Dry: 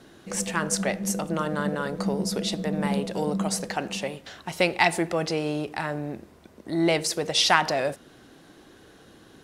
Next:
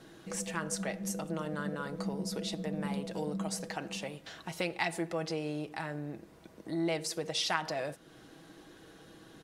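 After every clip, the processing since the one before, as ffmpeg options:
ffmpeg -i in.wav -af "aecho=1:1:6.2:0.41,acompressor=threshold=-41dB:ratio=1.5,volume=-3.5dB" out.wav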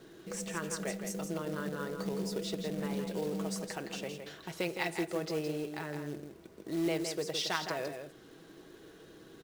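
ffmpeg -i in.wav -af "equalizer=frequency=400:width_type=o:width=0.33:gain=10,equalizer=frequency=800:width_type=o:width=0.33:gain=-3,equalizer=frequency=10000:width_type=o:width=0.33:gain=-4,aecho=1:1:164:0.447,acrusher=bits=4:mode=log:mix=0:aa=0.000001,volume=-2.5dB" out.wav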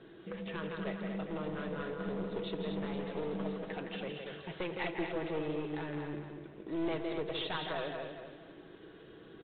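ffmpeg -i in.wav -af "aresample=8000,aeval=exprs='clip(val(0),-1,0.0158)':channel_layout=same,aresample=44100,aecho=1:1:238|476|714|952:0.473|0.17|0.0613|0.0221" -ar 48000 -c:a libvorbis -b:a 64k out.ogg

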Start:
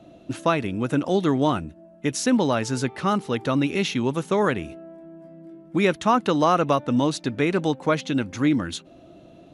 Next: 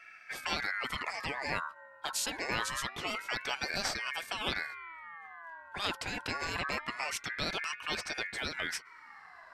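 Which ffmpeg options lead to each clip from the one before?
ffmpeg -i in.wav -af "afftfilt=real='re*lt(hypot(re,im),0.316)':imag='im*lt(hypot(re,im),0.316)':win_size=1024:overlap=0.75,aeval=exprs='val(0)*sin(2*PI*1600*n/s+1600*0.25/0.25*sin(2*PI*0.25*n/s))':channel_layout=same,volume=-2dB" out.wav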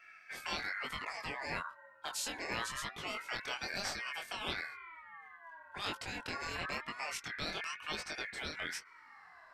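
ffmpeg -i in.wav -af "flanger=delay=19:depth=6.2:speed=1,volume=-1.5dB" out.wav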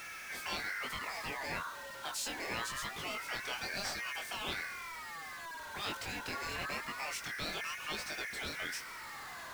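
ffmpeg -i in.wav -af "aeval=exprs='val(0)+0.5*0.0106*sgn(val(0))':channel_layout=same,volume=-2.5dB" out.wav

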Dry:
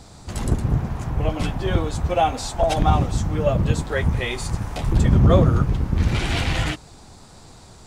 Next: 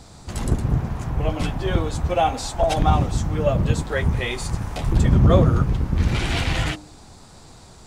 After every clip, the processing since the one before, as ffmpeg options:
ffmpeg -i in.wav -af "bandreject=frequency=100.7:width_type=h:width=4,bandreject=frequency=201.4:width_type=h:width=4,bandreject=frequency=302.1:width_type=h:width=4,bandreject=frequency=402.8:width_type=h:width=4,bandreject=frequency=503.5:width_type=h:width=4,bandreject=frequency=604.2:width_type=h:width=4,bandreject=frequency=704.9:width_type=h:width=4,bandreject=frequency=805.6:width_type=h:width=4,bandreject=frequency=906.3:width_type=h:width=4" out.wav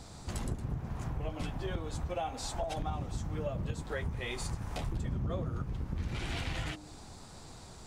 ffmpeg -i in.wav -af "acompressor=threshold=-29dB:ratio=5,volume=-4.5dB" out.wav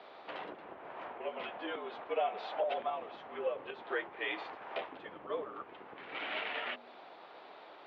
ffmpeg -i in.wav -af "highpass=frequency=470:width_type=q:width=0.5412,highpass=frequency=470:width_type=q:width=1.307,lowpass=frequency=3300:width_type=q:width=0.5176,lowpass=frequency=3300:width_type=q:width=0.7071,lowpass=frequency=3300:width_type=q:width=1.932,afreqshift=-62,volume=4dB" out.wav

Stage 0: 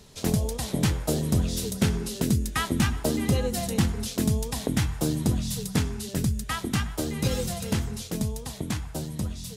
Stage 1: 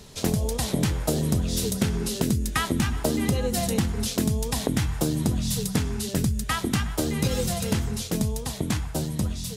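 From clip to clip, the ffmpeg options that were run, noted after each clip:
ffmpeg -i in.wav -af "acompressor=threshold=-25dB:ratio=6,volume=5dB" out.wav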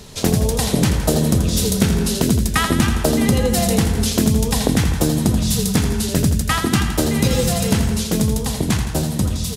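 ffmpeg -i in.wav -af "aecho=1:1:83|166|249|332|415|498|581|664:0.398|0.239|0.143|0.086|0.0516|0.031|0.0186|0.0111,volume=7dB" out.wav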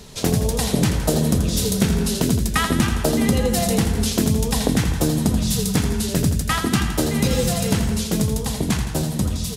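ffmpeg -i in.wav -af "flanger=delay=4.2:depth=3.1:regen=-71:speed=1.5:shape=sinusoidal,volume=2dB" out.wav

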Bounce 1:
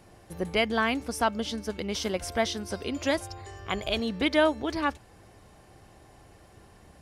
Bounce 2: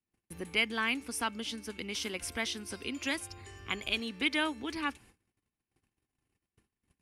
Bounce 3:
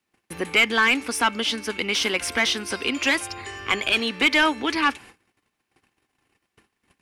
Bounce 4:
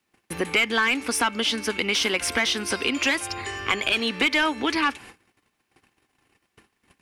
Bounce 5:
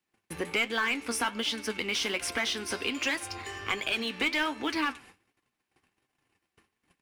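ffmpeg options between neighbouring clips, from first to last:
ffmpeg -i in.wav -filter_complex "[0:a]agate=range=-34dB:threshold=-49dB:ratio=16:detection=peak,equalizer=frequency=250:width_type=o:width=0.67:gain=7,equalizer=frequency=630:width_type=o:width=0.67:gain=-11,equalizer=frequency=2500:width_type=o:width=0.67:gain=8,equalizer=frequency=10000:width_type=o:width=0.67:gain=8,acrossover=split=330[link_01][link_02];[link_01]acompressor=threshold=-39dB:ratio=6[link_03];[link_03][link_02]amix=inputs=2:normalize=0,volume=-6dB" out.wav
ffmpeg -i in.wav -filter_complex "[0:a]asplit=2[link_01][link_02];[link_02]highpass=frequency=720:poles=1,volume=17dB,asoftclip=type=tanh:threshold=-15dB[link_03];[link_01][link_03]amix=inputs=2:normalize=0,lowpass=frequency=3000:poles=1,volume=-6dB,volume=7.5dB" out.wav
ffmpeg -i in.wav -af "acompressor=threshold=-25dB:ratio=2.5,volume=3.5dB" out.wav
ffmpeg -i in.wav -filter_complex "[0:a]asplit=2[link_01][link_02];[link_02]acrusher=bits=4:mix=0:aa=0.5,volume=-10.5dB[link_03];[link_01][link_03]amix=inputs=2:normalize=0,flanger=delay=5.5:depth=8.2:regen=61:speed=1.3:shape=triangular,asplit=2[link_04][link_05];[link_05]adelay=99.13,volume=-24dB,highshelf=frequency=4000:gain=-2.23[link_06];[link_04][link_06]amix=inputs=2:normalize=0,volume=-5dB" out.wav

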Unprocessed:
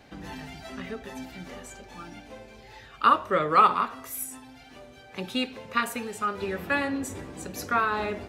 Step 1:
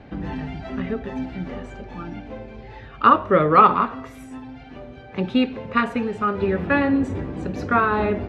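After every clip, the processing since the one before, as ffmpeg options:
ffmpeg -i in.wav -af "lowpass=2800,lowshelf=frequency=480:gain=9.5,volume=4dB" out.wav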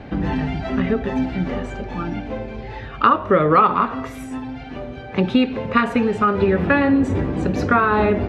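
ffmpeg -i in.wav -af "acompressor=threshold=-21dB:ratio=3,volume=7.5dB" out.wav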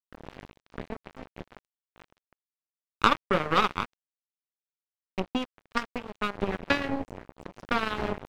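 ffmpeg -i in.wav -af "aeval=exprs='0.891*(cos(1*acos(clip(val(0)/0.891,-1,1)))-cos(1*PI/2))+0.2*(cos(3*acos(clip(val(0)/0.891,-1,1)))-cos(3*PI/2))+0.0251*(cos(6*acos(clip(val(0)/0.891,-1,1)))-cos(6*PI/2))+0.0126*(cos(7*acos(clip(val(0)/0.891,-1,1)))-cos(7*PI/2))':channel_layout=same,aeval=exprs='sgn(val(0))*max(abs(val(0))-0.0376,0)':channel_layout=same,tremolo=f=0.61:d=0.38,volume=-1dB" out.wav

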